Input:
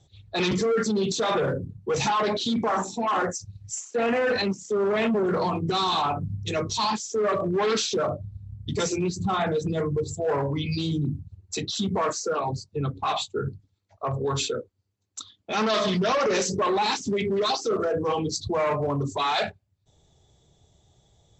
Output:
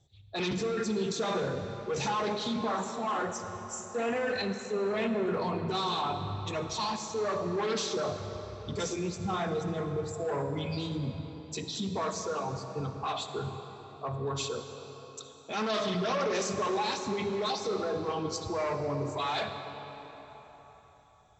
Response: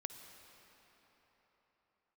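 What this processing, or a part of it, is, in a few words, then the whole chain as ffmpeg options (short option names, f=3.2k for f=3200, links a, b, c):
cathedral: -filter_complex "[1:a]atrim=start_sample=2205[a];[0:a][a]afir=irnorm=-1:irlink=0,volume=-4dB"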